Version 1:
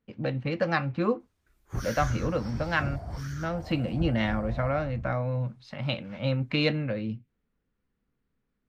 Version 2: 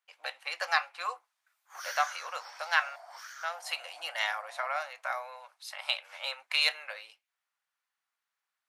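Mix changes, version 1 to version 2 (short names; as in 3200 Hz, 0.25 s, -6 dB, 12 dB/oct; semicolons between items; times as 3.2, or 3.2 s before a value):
speech: remove air absorption 190 m; master: add steep high-pass 740 Hz 36 dB/oct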